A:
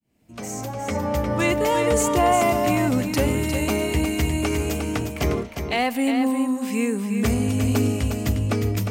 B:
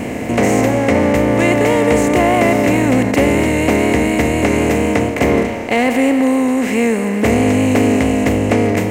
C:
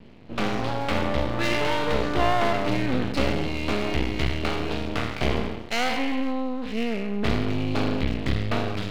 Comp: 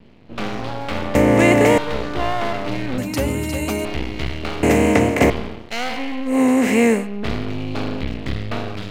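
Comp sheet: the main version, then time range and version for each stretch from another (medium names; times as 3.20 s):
C
1.15–1.78 s: from B
2.98–3.85 s: from A
4.63–5.30 s: from B
6.33–7.00 s: from B, crossfade 0.16 s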